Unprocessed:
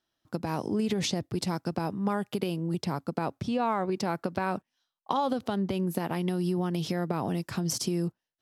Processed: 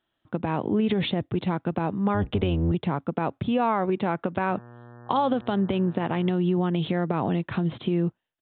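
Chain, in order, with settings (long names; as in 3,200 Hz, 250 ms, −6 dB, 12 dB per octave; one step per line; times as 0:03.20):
0:02.14–0:02.72: sub-octave generator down 1 octave, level +1 dB
in parallel at −2 dB: brickwall limiter −20 dBFS, peak gain reduction 7 dB
on the sum: downsampling to 8,000 Hz
0:04.48–0:06.31: hum with harmonics 120 Hz, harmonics 15, −46 dBFS −5 dB per octave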